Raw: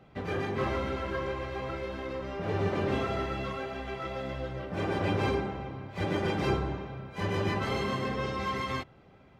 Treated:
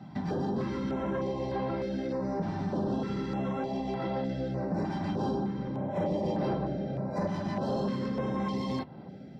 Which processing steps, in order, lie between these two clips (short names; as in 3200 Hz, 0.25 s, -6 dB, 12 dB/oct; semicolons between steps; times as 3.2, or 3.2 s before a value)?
5.61–8.2 bell 590 Hz +11 dB 0.41 oct; reverb, pre-delay 3 ms, DRR 9 dB; compressor 3:1, threshold -29 dBFS, peak gain reduction 13.5 dB; soft clip -22.5 dBFS, distortion -18 dB; stepped notch 3.3 Hz 470–6800 Hz